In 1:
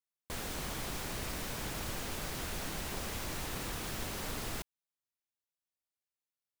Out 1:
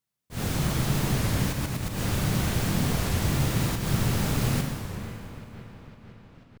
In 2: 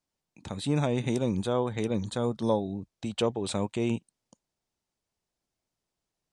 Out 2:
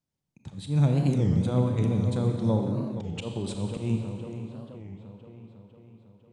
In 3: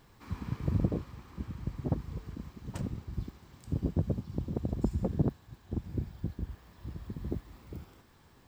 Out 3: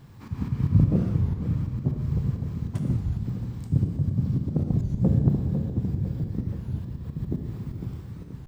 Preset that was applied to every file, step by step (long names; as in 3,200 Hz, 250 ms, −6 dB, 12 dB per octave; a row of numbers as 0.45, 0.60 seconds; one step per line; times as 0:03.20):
parametric band 130 Hz +15 dB 1.7 octaves
delay with a low-pass on its return 502 ms, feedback 58%, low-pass 2,600 Hz, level −11.5 dB
volume swells 128 ms
four-comb reverb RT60 2.1 s, combs from 28 ms, DRR 3.5 dB
wow of a warped record 33 1/3 rpm, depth 250 cents
loudness normalisation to −27 LKFS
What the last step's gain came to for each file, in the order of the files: +6.5, −6.5, +2.5 decibels